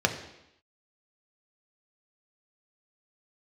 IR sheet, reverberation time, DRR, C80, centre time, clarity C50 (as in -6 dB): 0.85 s, 3.5 dB, 12.0 dB, 15 ms, 10.0 dB